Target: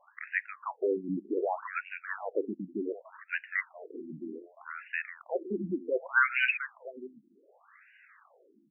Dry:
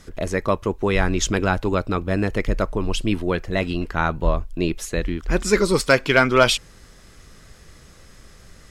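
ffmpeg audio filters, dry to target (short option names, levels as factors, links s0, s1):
-filter_complex "[0:a]highpass=f=140:p=1,lowshelf=f=350:g=-7,acrossover=split=1600[s0][s1];[s0]alimiter=limit=0.158:level=0:latency=1:release=17[s2];[s2][s1]amix=inputs=2:normalize=0,aecho=1:1:708:0.211,afftfilt=real='re*between(b*sr/1024,240*pow(2100/240,0.5+0.5*sin(2*PI*0.66*pts/sr))/1.41,240*pow(2100/240,0.5+0.5*sin(2*PI*0.66*pts/sr))*1.41)':imag='im*between(b*sr/1024,240*pow(2100/240,0.5+0.5*sin(2*PI*0.66*pts/sr))/1.41,240*pow(2100/240,0.5+0.5*sin(2*PI*0.66*pts/sr))*1.41)':win_size=1024:overlap=0.75"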